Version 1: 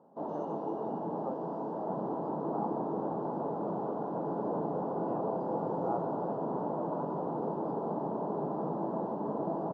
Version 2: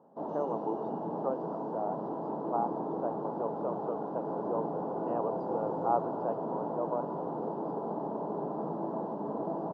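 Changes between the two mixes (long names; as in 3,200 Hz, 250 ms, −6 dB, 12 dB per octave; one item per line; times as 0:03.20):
speech +8.0 dB
second sound −5.0 dB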